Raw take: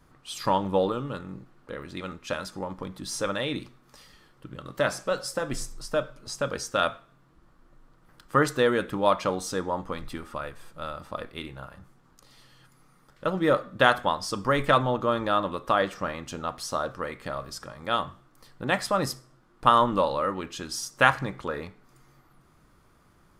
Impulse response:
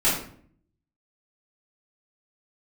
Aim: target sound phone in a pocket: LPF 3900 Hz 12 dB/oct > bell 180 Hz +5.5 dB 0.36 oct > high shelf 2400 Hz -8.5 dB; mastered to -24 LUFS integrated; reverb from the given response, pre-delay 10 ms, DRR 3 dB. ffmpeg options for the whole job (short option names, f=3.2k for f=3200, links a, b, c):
-filter_complex "[0:a]asplit=2[a][b];[1:a]atrim=start_sample=2205,adelay=10[c];[b][c]afir=irnorm=-1:irlink=0,volume=-18dB[d];[a][d]amix=inputs=2:normalize=0,lowpass=3.9k,equalizer=f=180:t=o:w=0.36:g=5.5,highshelf=f=2.4k:g=-8.5,volume=2.5dB"